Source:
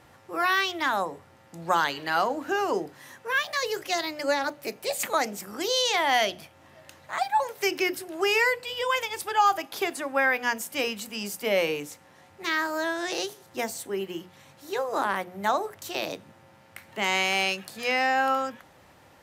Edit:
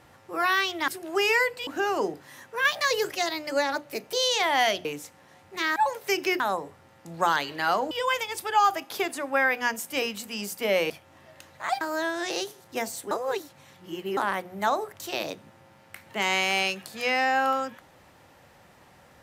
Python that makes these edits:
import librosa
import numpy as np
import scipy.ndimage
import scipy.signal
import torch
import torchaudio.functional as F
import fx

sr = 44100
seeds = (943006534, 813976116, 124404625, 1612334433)

y = fx.edit(x, sr, fx.swap(start_s=0.88, length_s=1.51, other_s=7.94, other_length_s=0.79),
    fx.clip_gain(start_s=3.37, length_s=0.5, db=3.5),
    fx.cut(start_s=4.85, length_s=0.82),
    fx.swap(start_s=6.39, length_s=0.91, other_s=11.72, other_length_s=0.91),
    fx.reverse_span(start_s=13.93, length_s=1.06), tone=tone)